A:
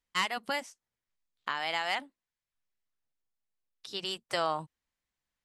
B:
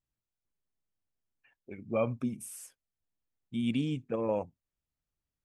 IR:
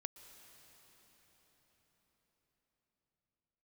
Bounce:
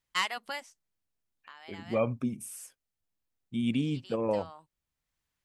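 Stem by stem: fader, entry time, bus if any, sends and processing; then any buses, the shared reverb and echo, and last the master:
+2.5 dB, 0.00 s, no send, low-shelf EQ 300 Hz −11 dB; automatic ducking −19 dB, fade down 1.35 s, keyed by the second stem
+1.5 dB, 0.00 s, no send, no processing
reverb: not used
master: no processing

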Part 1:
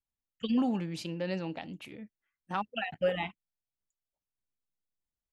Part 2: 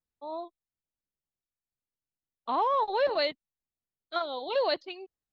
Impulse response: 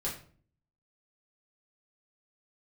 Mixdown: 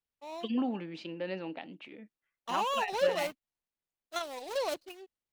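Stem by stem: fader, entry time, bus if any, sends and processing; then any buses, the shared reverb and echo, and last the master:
−1.0 dB, 0.00 s, no send, Chebyshev band-pass filter 280–3,100 Hz, order 2
−6.0 dB, 0.00 s, no send, running median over 25 samples; high-shelf EQ 2,000 Hz +11.5 dB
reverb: not used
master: no processing

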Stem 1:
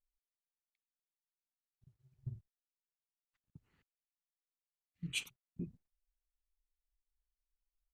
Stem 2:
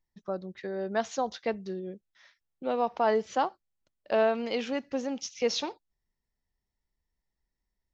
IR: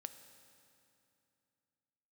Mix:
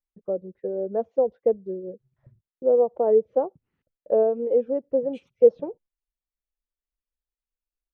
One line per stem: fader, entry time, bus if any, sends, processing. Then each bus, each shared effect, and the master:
−5.5 dB, 0.00 s, no send, low-pass filter 3,700 Hz 12 dB per octave; parametric band 250 Hz +6 dB 2.5 octaves; downward compressor 6 to 1, threshold −45 dBFS, peak gain reduction 12.5 dB
−1.0 dB, 0.00 s, no send, noise gate with hold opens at −55 dBFS; reverb reduction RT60 0.52 s; low-pass with resonance 500 Hz, resonance Q 5.7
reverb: not used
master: no processing

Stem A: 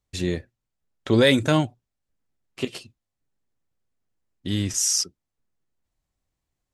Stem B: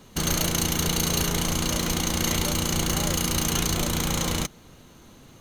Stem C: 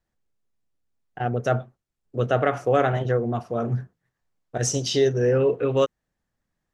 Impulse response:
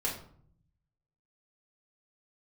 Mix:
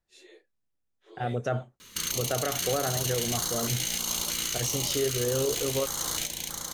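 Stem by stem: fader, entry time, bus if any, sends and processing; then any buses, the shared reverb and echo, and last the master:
−19.0 dB, 0.00 s, no send, no echo send, random phases in long frames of 100 ms; Butterworth high-pass 360 Hz 48 dB per octave; automatic ducking −8 dB, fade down 1.40 s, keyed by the third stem
−2.0 dB, 1.80 s, no send, echo send −5 dB, tilt shelving filter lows −9 dB, about 670 Hz; downward compressor, threshold −23 dBFS, peak gain reduction 10 dB; notch on a step sequencer 3.2 Hz 740–2,600 Hz
−4.5 dB, 0.00 s, no send, no echo send, no processing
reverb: not used
echo: single-tap delay 636 ms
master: brickwall limiter −17.5 dBFS, peak gain reduction 7.5 dB

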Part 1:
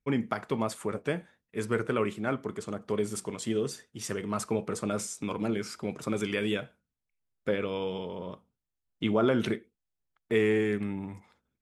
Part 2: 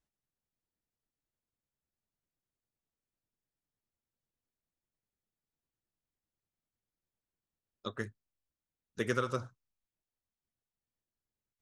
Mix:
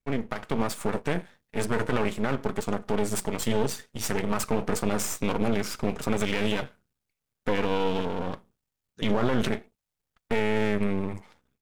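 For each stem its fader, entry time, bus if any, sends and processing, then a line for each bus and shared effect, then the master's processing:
+3.0 dB, 0.00 s, no send, automatic gain control gain up to 9 dB; notch comb filter 340 Hz; half-wave rectification
−6.0 dB, 0.00 s, no send, downward compressor, threshold −35 dBFS, peak gain reduction 9 dB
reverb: not used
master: brickwall limiter −13 dBFS, peak gain reduction 10 dB

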